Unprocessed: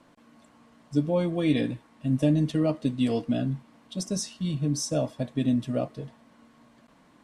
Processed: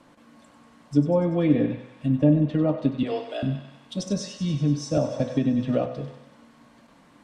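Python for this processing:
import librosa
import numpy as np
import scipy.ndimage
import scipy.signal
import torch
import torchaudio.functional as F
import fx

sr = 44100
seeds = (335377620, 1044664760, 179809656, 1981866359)

y = fx.steep_highpass(x, sr, hz=350.0, slope=72, at=(3.03, 3.43))
y = fx.env_lowpass_down(y, sr, base_hz=1300.0, full_db=-20.0)
y = fx.echo_thinned(y, sr, ms=96, feedback_pct=69, hz=790.0, wet_db=-9.0)
y = fx.rev_fdn(y, sr, rt60_s=0.79, lf_ratio=0.8, hf_ratio=0.5, size_ms=11.0, drr_db=9.5)
y = fx.band_squash(y, sr, depth_pct=100, at=(4.97, 5.86))
y = F.gain(torch.from_numpy(y), 3.0).numpy()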